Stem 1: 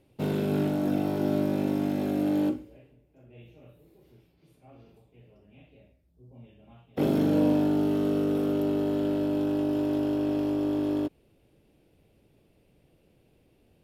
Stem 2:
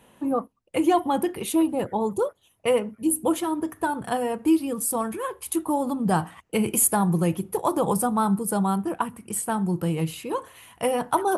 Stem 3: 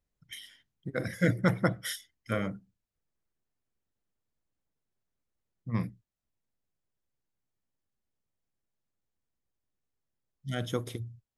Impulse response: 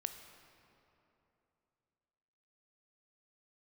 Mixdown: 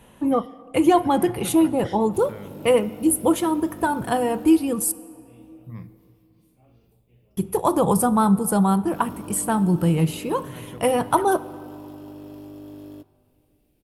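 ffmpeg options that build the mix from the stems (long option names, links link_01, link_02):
-filter_complex "[0:a]aemphasis=mode=production:type=50fm,acompressor=threshold=-43dB:ratio=1.5,adelay=1950,volume=-10.5dB,asplit=2[link_01][link_02];[link_02]volume=-5dB[link_03];[1:a]volume=0dB,asplit=3[link_04][link_05][link_06];[link_04]atrim=end=4.92,asetpts=PTS-STARTPTS,afade=type=out:start_time=4.916:duration=0.004:curve=hsin[link_07];[link_05]atrim=start=4.92:end=7.37,asetpts=PTS-STARTPTS,volume=0[link_08];[link_06]atrim=start=7.37,asetpts=PTS-STARTPTS,afade=type=in:duration=0.004:curve=hsin[link_09];[link_07][link_08][link_09]concat=n=3:v=0:a=1,asplit=2[link_10][link_11];[link_11]volume=-5dB[link_12];[2:a]lowpass=4500,volume=-8dB,asplit=2[link_13][link_14];[link_14]volume=-9dB[link_15];[link_01][link_13]amix=inputs=2:normalize=0,alimiter=level_in=11dB:limit=-24dB:level=0:latency=1:release=188,volume=-11dB,volume=0dB[link_16];[3:a]atrim=start_sample=2205[link_17];[link_03][link_12][link_15]amix=inputs=3:normalize=0[link_18];[link_18][link_17]afir=irnorm=-1:irlink=0[link_19];[link_10][link_16][link_19]amix=inputs=3:normalize=0,lowshelf=frequency=100:gain=11.5"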